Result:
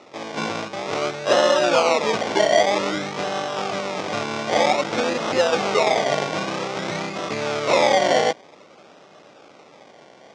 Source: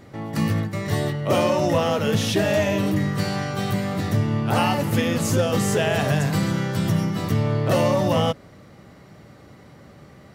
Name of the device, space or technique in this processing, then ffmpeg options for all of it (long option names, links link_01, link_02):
circuit-bent sampling toy: -af "acrusher=samples=27:mix=1:aa=0.000001:lfo=1:lforange=16.2:lforate=0.52,highpass=530,equalizer=frequency=1000:width_type=q:width=4:gain=-5,equalizer=frequency=1700:width_type=q:width=4:gain=-8,equalizer=frequency=2900:width_type=q:width=4:gain=-4,equalizer=frequency=4300:width_type=q:width=4:gain=-5,lowpass=frequency=5700:width=0.5412,lowpass=frequency=5700:width=1.3066,volume=7.5dB"